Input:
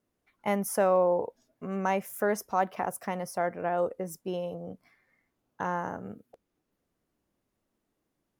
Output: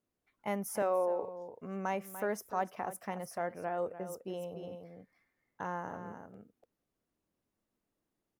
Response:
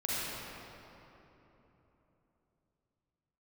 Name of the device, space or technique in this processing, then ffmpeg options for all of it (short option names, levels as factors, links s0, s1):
ducked delay: -filter_complex "[0:a]asplit=3[s0][s1][s2];[s1]adelay=294,volume=0.562[s3];[s2]apad=whole_len=383203[s4];[s3][s4]sidechaincompress=threshold=0.0282:ratio=8:attack=6.1:release=762[s5];[s0][s5]amix=inputs=2:normalize=0,asettb=1/sr,asplit=3[s6][s7][s8];[s6]atrim=end=0.824[s9];[s7]atrim=start=0.82:end=1.23,asetpts=PTS-STARTPTS,afade=t=in:d=0.004:c=qsin,afade=t=out:st=0.406:d=0.004:c=qsin,highpass=f=250:w=0.5412,highpass=f=250:w=1.3066[s10];[s8]atrim=start=1.226[s11];[s9][s10]acrossfade=d=0.004:c1=hsin:c2=qsin[s12];[s12][s11]acrossfade=d=0.004:c1=qsin:c2=hsin,volume=0.447"